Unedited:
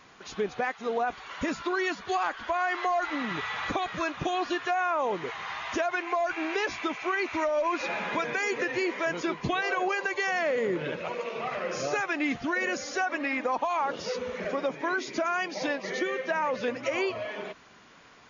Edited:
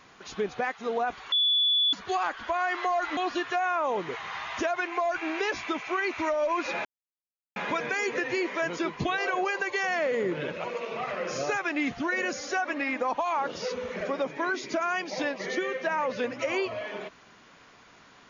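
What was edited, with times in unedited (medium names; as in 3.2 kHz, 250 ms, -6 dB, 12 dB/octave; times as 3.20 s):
1.32–1.93 s: bleep 3.44 kHz -20.5 dBFS
3.17–4.32 s: delete
8.00 s: insert silence 0.71 s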